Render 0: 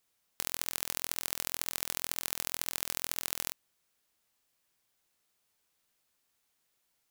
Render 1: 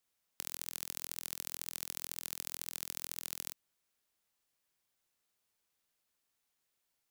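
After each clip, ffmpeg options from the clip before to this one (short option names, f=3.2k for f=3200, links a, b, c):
-filter_complex "[0:a]acrossover=split=350|3000[a][b][c];[b]acompressor=threshold=-43dB:ratio=6[d];[a][d][c]amix=inputs=3:normalize=0,volume=-5.5dB"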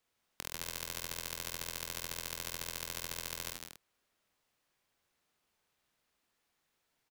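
-af "highshelf=f=5k:g=-11.5,aecho=1:1:49.56|154.5|236.2:0.501|0.562|0.355,volume=6dB"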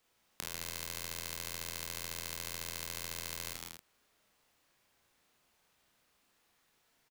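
-filter_complex "[0:a]acompressor=threshold=-47dB:ratio=2,asplit=2[a][b];[b]adelay=35,volume=-4dB[c];[a][c]amix=inputs=2:normalize=0,volume=5.5dB"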